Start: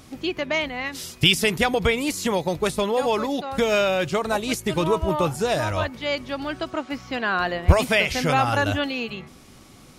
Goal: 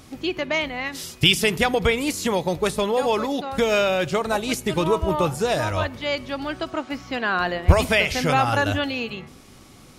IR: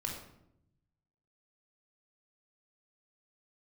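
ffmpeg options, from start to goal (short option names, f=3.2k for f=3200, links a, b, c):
-filter_complex "[0:a]asplit=2[a][b];[1:a]atrim=start_sample=2205,asetrate=37485,aresample=44100[c];[b][c]afir=irnorm=-1:irlink=0,volume=-20.5dB[d];[a][d]amix=inputs=2:normalize=0"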